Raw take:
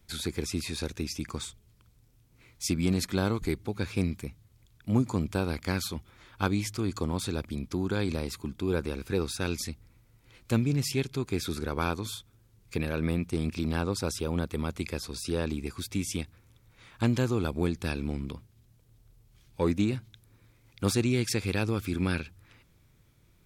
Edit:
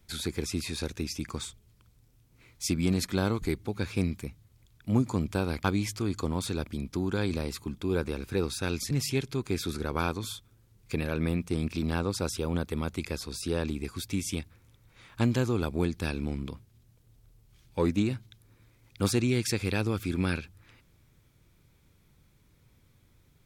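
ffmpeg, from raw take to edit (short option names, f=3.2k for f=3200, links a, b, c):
-filter_complex "[0:a]asplit=3[a][b][c];[a]atrim=end=5.642[d];[b]atrim=start=6.418:end=9.692[e];[c]atrim=start=10.728[f];[d][e]acrossfade=d=0.004:c1=hsin:c2=hsin[g];[g][f]acrossfade=d=0.004:c1=hsin:c2=hsin"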